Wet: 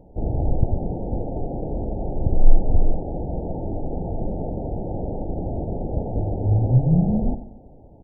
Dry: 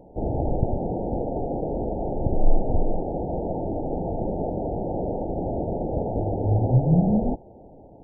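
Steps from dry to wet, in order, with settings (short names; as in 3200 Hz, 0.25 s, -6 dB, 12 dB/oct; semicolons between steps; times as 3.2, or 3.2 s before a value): low shelf 170 Hz +11.5 dB; on a send: feedback echo 93 ms, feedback 46%, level -13.5 dB; on the sum: gain -5 dB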